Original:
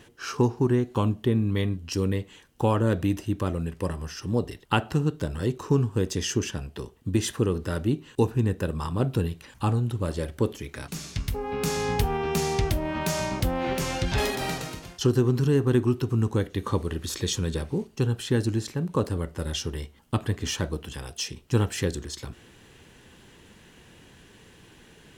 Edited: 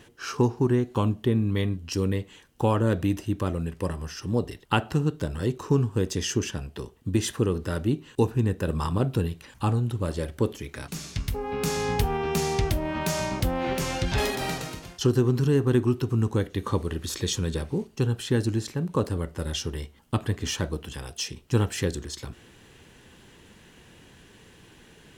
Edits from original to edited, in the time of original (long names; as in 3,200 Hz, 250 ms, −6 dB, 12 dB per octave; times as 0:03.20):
0:08.67–0:08.98: clip gain +3 dB